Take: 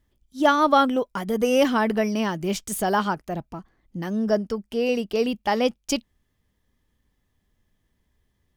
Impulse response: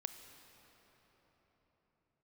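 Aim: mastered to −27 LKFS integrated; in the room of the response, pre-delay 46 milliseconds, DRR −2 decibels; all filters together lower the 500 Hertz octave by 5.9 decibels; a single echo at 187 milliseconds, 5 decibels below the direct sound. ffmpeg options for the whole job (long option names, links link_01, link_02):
-filter_complex "[0:a]equalizer=frequency=500:width_type=o:gain=-7,aecho=1:1:187:0.562,asplit=2[link_01][link_02];[1:a]atrim=start_sample=2205,adelay=46[link_03];[link_02][link_03]afir=irnorm=-1:irlink=0,volume=4.5dB[link_04];[link_01][link_04]amix=inputs=2:normalize=0,volume=-6.5dB"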